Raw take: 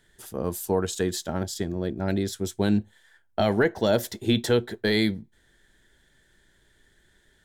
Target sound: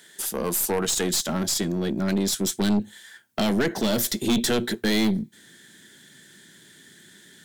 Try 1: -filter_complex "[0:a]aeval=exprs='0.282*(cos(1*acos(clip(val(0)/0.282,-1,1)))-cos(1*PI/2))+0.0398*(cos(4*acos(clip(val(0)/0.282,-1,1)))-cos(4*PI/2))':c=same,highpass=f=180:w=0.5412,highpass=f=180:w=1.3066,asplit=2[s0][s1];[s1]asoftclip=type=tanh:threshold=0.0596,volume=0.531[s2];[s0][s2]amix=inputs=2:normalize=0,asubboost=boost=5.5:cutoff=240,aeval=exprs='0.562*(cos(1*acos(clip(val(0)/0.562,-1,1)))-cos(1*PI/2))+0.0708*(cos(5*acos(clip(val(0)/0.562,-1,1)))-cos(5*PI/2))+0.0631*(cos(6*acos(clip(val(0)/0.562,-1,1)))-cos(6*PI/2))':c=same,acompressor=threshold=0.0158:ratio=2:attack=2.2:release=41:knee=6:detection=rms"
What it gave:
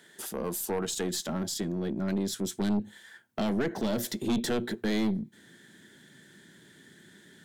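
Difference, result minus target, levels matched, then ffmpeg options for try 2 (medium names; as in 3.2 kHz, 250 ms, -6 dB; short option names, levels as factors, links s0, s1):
compression: peak gain reduction +5.5 dB; 4 kHz band -3.0 dB
-filter_complex "[0:a]aeval=exprs='0.282*(cos(1*acos(clip(val(0)/0.282,-1,1)))-cos(1*PI/2))+0.0398*(cos(4*acos(clip(val(0)/0.282,-1,1)))-cos(4*PI/2))':c=same,highpass=f=180:w=0.5412,highpass=f=180:w=1.3066,highshelf=f=2300:g=10.5,asplit=2[s0][s1];[s1]asoftclip=type=tanh:threshold=0.0596,volume=0.531[s2];[s0][s2]amix=inputs=2:normalize=0,asubboost=boost=5.5:cutoff=240,aeval=exprs='0.562*(cos(1*acos(clip(val(0)/0.562,-1,1)))-cos(1*PI/2))+0.0708*(cos(5*acos(clip(val(0)/0.562,-1,1)))-cos(5*PI/2))+0.0631*(cos(6*acos(clip(val(0)/0.562,-1,1)))-cos(6*PI/2))':c=same,acompressor=threshold=0.0596:ratio=2:attack=2.2:release=41:knee=6:detection=rms"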